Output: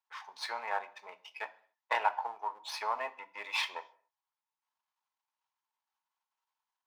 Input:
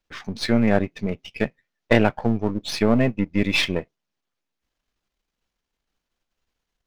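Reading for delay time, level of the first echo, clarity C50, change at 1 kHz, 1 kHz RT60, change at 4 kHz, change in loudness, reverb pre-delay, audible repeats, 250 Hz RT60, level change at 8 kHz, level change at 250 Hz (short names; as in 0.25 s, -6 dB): none, none, 18.0 dB, -2.5 dB, 0.50 s, -11.5 dB, -13.5 dB, 3 ms, none, 0.45 s, -12.0 dB, under -40 dB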